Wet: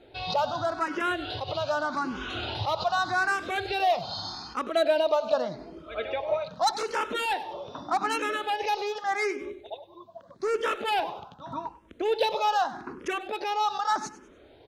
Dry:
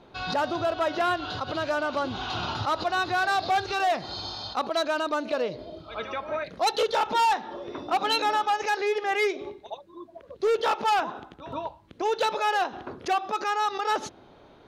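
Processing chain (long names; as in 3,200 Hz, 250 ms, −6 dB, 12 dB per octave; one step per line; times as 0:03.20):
0:04.75–0:06.34: parametric band 680 Hz +7 dB 0.66 octaves
on a send: repeating echo 98 ms, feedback 35%, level −16 dB
on the sum: frequency shifter mixed with the dry sound +0.83 Hz
level +1.5 dB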